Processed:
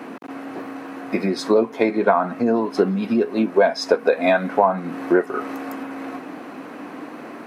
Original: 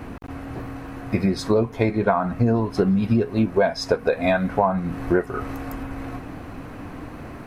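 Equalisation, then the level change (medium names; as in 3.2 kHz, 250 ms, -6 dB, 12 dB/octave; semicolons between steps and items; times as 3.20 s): high-pass 230 Hz 24 dB/octave; treble shelf 7.2 kHz -5 dB; +3.5 dB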